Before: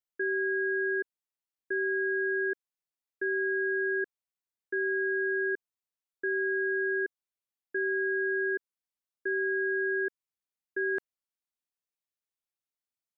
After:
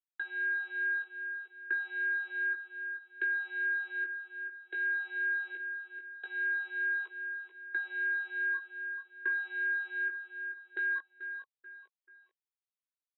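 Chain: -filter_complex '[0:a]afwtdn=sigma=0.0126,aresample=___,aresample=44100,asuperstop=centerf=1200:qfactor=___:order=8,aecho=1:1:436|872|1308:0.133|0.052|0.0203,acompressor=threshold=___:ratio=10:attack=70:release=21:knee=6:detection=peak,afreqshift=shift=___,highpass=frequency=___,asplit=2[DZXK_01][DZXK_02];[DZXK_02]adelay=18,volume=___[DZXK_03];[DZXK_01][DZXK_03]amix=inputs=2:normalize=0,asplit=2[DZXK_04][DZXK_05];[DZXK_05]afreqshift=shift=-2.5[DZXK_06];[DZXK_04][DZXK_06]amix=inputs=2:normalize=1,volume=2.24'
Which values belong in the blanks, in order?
11025, 6.7, 0.00631, -20, 950, 0.596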